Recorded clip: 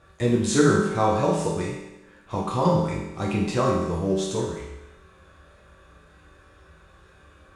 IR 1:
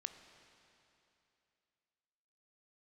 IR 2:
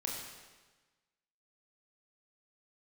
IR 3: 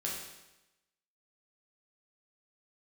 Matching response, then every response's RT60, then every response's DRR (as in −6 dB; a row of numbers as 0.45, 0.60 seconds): 3; 2.8, 1.3, 1.0 seconds; 8.5, −2.5, −4.0 decibels